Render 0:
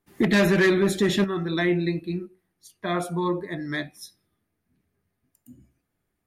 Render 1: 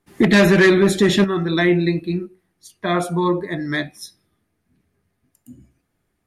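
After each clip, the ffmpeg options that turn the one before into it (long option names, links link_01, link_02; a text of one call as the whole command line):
ffmpeg -i in.wav -af "lowpass=12000,volume=6.5dB" out.wav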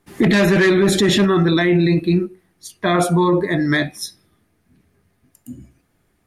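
ffmpeg -i in.wav -af "alimiter=limit=-15.5dB:level=0:latency=1:release=13,volume=7.5dB" out.wav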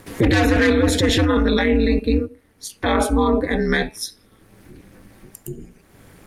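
ffmpeg -i in.wav -filter_complex "[0:a]asplit=2[link_01][link_02];[link_02]acompressor=mode=upward:threshold=-16dB:ratio=2.5,volume=-3dB[link_03];[link_01][link_03]amix=inputs=2:normalize=0,aeval=exprs='val(0)*sin(2*PI*110*n/s)':channel_layout=same,volume=-3.5dB" out.wav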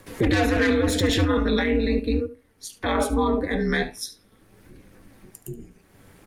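ffmpeg -i in.wav -filter_complex "[0:a]flanger=delay=1.8:depth=8.9:regen=72:speed=0.42:shape=sinusoidal,acrossover=split=310|490|4000[link_01][link_02][link_03][link_04];[link_04]aeval=exprs='(mod(8.41*val(0)+1,2)-1)/8.41':channel_layout=same[link_05];[link_01][link_02][link_03][link_05]amix=inputs=4:normalize=0,aecho=1:1:73:0.15" out.wav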